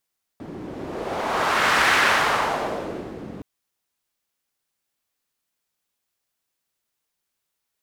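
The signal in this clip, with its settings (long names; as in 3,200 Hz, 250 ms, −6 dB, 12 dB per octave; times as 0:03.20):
wind from filtered noise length 3.02 s, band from 270 Hz, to 1,600 Hz, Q 1.4, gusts 1, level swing 18.5 dB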